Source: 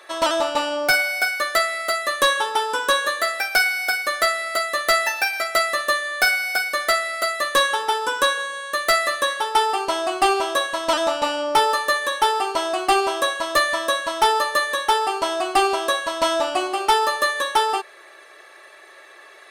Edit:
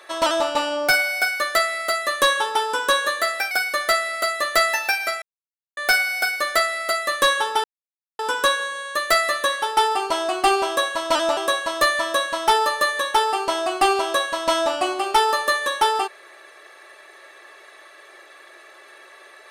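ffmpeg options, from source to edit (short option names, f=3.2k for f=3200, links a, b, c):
-filter_complex "[0:a]asplit=6[a][b][c][d][e][f];[a]atrim=end=3.512[g];[b]atrim=start=3.838:end=5.55,asetpts=PTS-STARTPTS,afade=t=out:st=1.708:d=0.004:c=hsin[h];[c]atrim=start=5.55:end=6.1,asetpts=PTS-STARTPTS,volume=0[i];[d]atrim=start=6.1:end=7.97,asetpts=PTS-STARTPTS,afade=t=in:d=0.004:c=hsin,afade=t=out:st=1.866:d=0.004:c=hsin,apad=pad_dur=0.55[j];[e]atrim=start=7.97:end=11.152,asetpts=PTS-STARTPTS,afade=t=in:d=0.004:c=hsin[k];[f]atrim=start=13.108[l];[h][i][j][k]concat=n=4:v=0:a=1[m];[g][m]acrossfade=d=0.004:c1=hsin:c2=hsin[n];[n][l]acrossfade=d=0.004:c1=hsin:c2=hsin"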